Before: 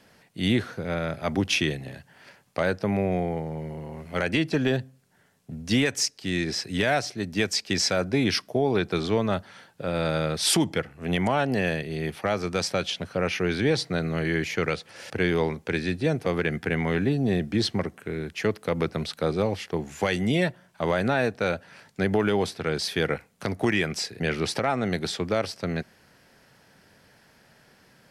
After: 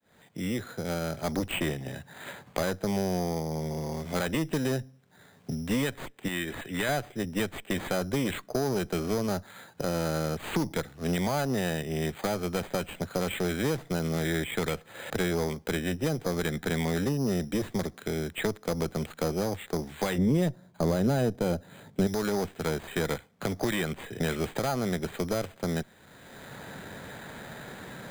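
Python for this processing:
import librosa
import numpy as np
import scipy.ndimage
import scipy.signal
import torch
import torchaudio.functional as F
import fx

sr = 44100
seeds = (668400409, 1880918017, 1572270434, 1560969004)

y = fx.fade_in_head(x, sr, length_s=1.51)
y = fx.low_shelf(y, sr, hz=490.0, db=-12.0, at=(6.28, 6.89))
y = fx.tube_stage(y, sr, drive_db=21.0, bias=0.65)
y = np.repeat(scipy.signal.resample_poly(y, 1, 8), 8)[:len(y)]
y = fx.tilt_shelf(y, sr, db=9.5, hz=910.0, at=(20.18, 22.07))
y = fx.band_squash(y, sr, depth_pct=70)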